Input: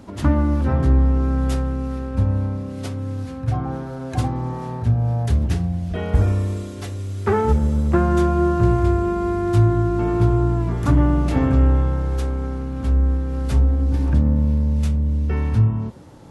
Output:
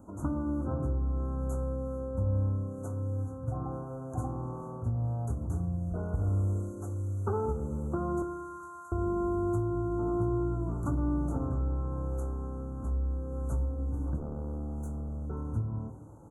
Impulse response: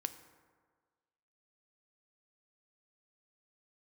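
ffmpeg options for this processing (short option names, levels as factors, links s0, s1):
-filter_complex "[0:a]asettb=1/sr,asplit=3[s0][s1][s2];[s0]atrim=end=8.224[s3];[s1]atrim=start=8.22:end=8.92,asetpts=PTS-STARTPTS,afade=t=in:d=0.004:c=qsin,afade=t=out:st=0.696:d=0.004:c=qsin,highpass=f=1300:w=0.5412,highpass=f=1300:w=1.3066[s4];[s2]atrim=start=8.916[s5];[s3][s4]acrossfade=d=0.004:c1=hsin:c2=qsin[s6];[s6][s5]acrossfade=d=0.004:c1=qsin:c2=hsin,acompressor=threshold=0.141:ratio=6,asplit=3[s7][s8][s9];[s7]afade=t=out:st=14.16:d=0.02[s10];[s8]aeval=exprs='0.126*(abs(mod(val(0)/0.126+3,4)-2)-1)':c=same,afade=t=in:st=14.16:d=0.02,afade=t=out:st=15.25:d=0.02[s11];[s9]afade=t=in:st=15.25:d=0.02[s12];[s10][s11][s12]amix=inputs=3:normalize=0,asuperstop=centerf=3100:order=20:qfactor=0.63,asplit=2[s13][s14];[s14]adelay=21,volume=0.251[s15];[s13][s15]amix=inputs=2:normalize=0[s16];[1:a]atrim=start_sample=2205[s17];[s16][s17]afir=irnorm=-1:irlink=0,volume=0.355"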